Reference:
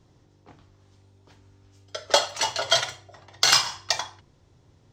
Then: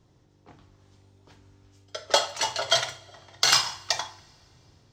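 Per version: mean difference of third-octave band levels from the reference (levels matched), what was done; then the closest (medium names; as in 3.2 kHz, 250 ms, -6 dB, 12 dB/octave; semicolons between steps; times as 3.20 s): 1.5 dB: level rider gain up to 3.5 dB; two-slope reverb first 0.46 s, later 2.9 s, from -17 dB, DRR 15 dB; trim -3 dB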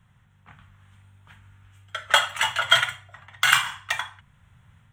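6.0 dB: FFT filter 210 Hz 0 dB, 310 Hz -23 dB, 1.5 kHz +8 dB, 3.3 kHz +2 dB, 4.8 kHz -22 dB, 8.8 kHz +5 dB; level rider gain up to 4 dB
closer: first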